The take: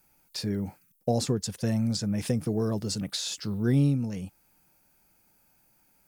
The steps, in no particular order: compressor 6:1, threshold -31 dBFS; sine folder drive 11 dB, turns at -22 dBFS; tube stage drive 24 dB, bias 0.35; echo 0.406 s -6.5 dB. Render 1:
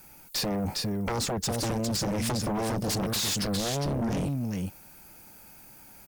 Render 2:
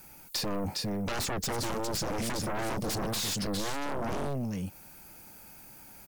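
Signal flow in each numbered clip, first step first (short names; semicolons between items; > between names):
compressor > echo > sine folder > tube stage; echo > tube stage > sine folder > compressor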